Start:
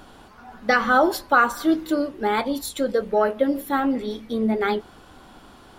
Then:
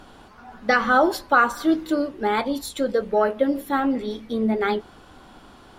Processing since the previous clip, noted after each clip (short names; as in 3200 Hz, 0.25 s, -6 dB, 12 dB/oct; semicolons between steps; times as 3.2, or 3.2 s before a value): high shelf 12000 Hz -8.5 dB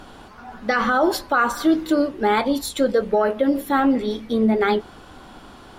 limiter -14 dBFS, peak gain reduction 8.5 dB; gain +4.5 dB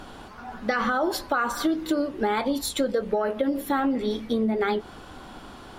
compressor, threshold -21 dBFS, peak gain reduction 8 dB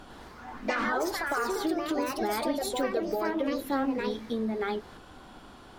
echoes that change speed 0.104 s, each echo +3 st, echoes 2; gain -6.5 dB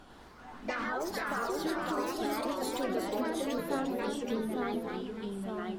echoes that change speed 0.397 s, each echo -2 st, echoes 2; gain -6 dB